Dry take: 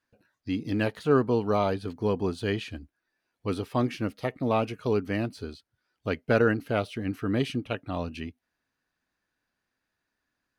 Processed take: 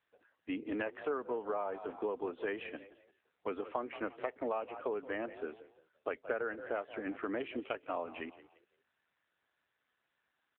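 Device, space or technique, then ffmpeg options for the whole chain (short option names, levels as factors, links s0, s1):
voicemail: -filter_complex "[0:a]acrossover=split=210 3200:gain=0.178 1 0.1[s0][s1][s2];[s0][s1][s2]amix=inputs=3:normalize=0,asplit=4[s3][s4][s5][s6];[s4]adelay=172,afreqshift=48,volume=0.126[s7];[s5]adelay=344,afreqshift=96,volume=0.0403[s8];[s6]adelay=516,afreqshift=144,volume=0.0129[s9];[s3][s7][s8][s9]amix=inputs=4:normalize=0,adynamicequalizer=threshold=0.00158:dfrequency=7500:dqfactor=0.88:tfrequency=7500:tqfactor=0.88:attack=5:release=100:ratio=0.375:range=3:mode=cutabove:tftype=bell,highpass=430,lowpass=3000,acompressor=threshold=0.0158:ratio=8,volume=1.5" -ar 8000 -c:a libopencore_amrnb -b:a 7400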